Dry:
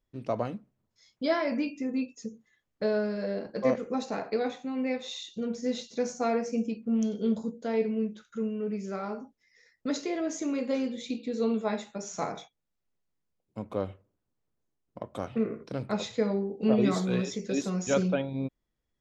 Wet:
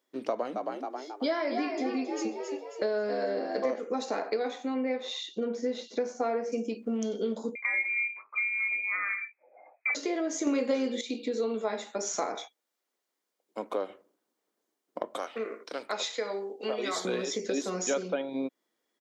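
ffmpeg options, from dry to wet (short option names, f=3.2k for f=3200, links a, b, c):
-filter_complex "[0:a]asplit=3[a][b][c];[a]afade=t=out:st=0.54:d=0.02[d];[b]asplit=6[e][f][g][h][i][j];[f]adelay=270,afreqshift=65,volume=-9dB[k];[g]adelay=540,afreqshift=130,volume=-15.6dB[l];[h]adelay=810,afreqshift=195,volume=-22.1dB[m];[i]adelay=1080,afreqshift=260,volume=-28.7dB[n];[j]adelay=1350,afreqshift=325,volume=-35.2dB[o];[e][k][l][m][n][o]amix=inputs=6:normalize=0,afade=t=in:st=0.54:d=0.02,afade=t=out:st=3.79:d=0.02[p];[c]afade=t=in:st=3.79:d=0.02[q];[d][p][q]amix=inputs=3:normalize=0,asettb=1/sr,asplit=3[r][s][t];[r]atrim=end=4.744[u];[s]atrim=start=4.74:end=6.52,asetpts=PTS-STARTPTS,afade=t=in:d=0.004:c=qsin,afade=t=out:st=1.776:d=0.004:c=qsin,aemphasis=mode=reproduction:type=75fm[v];[t]atrim=start=6.516[w];[u][v]acrossfade=d=0.004:c1=hsin:c2=qsin[x];[x][w]acrossfade=d=0.004:c1=qsin:c2=hsin,asettb=1/sr,asplit=3[y][z][aa];[y]atrim=end=7.554[ab];[z]atrim=start=7.55:end=9.95,asetpts=PTS-STARTPTS,afade=t=in:d=0.004:c=qsin,afade=t=out:st=2.396:d=0.004:c=qsin,lowpass=f=2.2k:t=q:w=0.5098,lowpass=f=2.2k:t=q:w=0.6013,lowpass=f=2.2k:t=q:w=0.9,lowpass=f=2.2k:t=q:w=2.563,afreqshift=-2600[ac];[aa]atrim=start=9.946[ad];[ab][ac]acrossfade=d=0.004:c1=hsin:c2=qsin[ae];[ae][ad]acrossfade=d=0.004:c1=qsin:c2=hsin,asettb=1/sr,asplit=3[af][ag][ah];[af]atrim=end=12.354[ai];[ag]atrim=start=12.35:end=13.9,asetpts=PTS-STARTPTS,afade=t=in:d=0.004:c=qsin,afade=t=out:st=1.546:d=0.004:c=qsin,highpass=f=340:p=1[aj];[ah]atrim=start=13.896[ak];[ai][aj]acrossfade=d=0.004:c1=hsin:c2=qsin[al];[al][ak]acrossfade=d=0.004:c1=qsin:c2=hsin,asettb=1/sr,asplit=3[am][an][ao];[am]atrim=end=15.174[ap];[an]atrim=start=15.17:end=17.05,asetpts=PTS-STARTPTS,afade=t=in:d=0.004:c=qsin,afade=t=out:st=1.876:d=0.004:c=qsin,highpass=f=1.3k:p=1[aq];[ao]atrim=start=17.046[ar];[ap][aq]acrossfade=d=0.004:c1=hsin:c2=qsin[as];[as][ar]acrossfade=d=0.004:c1=qsin:c2=hsin,asplit=3[at][au][av];[at]atrim=end=10.472[aw];[au]atrim=start=10.468:end=11.012,asetpts=PTS-STARTPTS,volume=11.5dB[ax];[av]atrim=start=11.008[ay];[aw][ax]acrossfade=d=0.004:c1=hsin:c2=hsin[az];[az][ay]acrossfade=d=0.004:c1=hsin:c2=hsin,highpass=f=280:w=0.5412,highpass=f=280:w=1.3066,bandreject=f=2.6k:w=15,acompressor=threshold=-37dB:ratio=4,volume=8.5dB"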